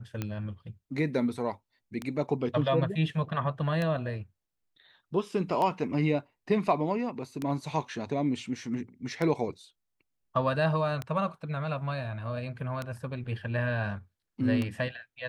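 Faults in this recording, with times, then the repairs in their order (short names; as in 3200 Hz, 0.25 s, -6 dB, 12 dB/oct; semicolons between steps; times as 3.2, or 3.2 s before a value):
tick 33 1/3 rpm -18 dBFS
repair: de-click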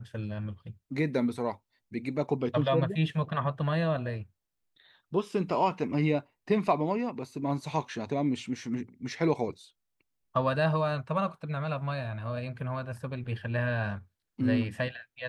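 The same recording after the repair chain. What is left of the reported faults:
none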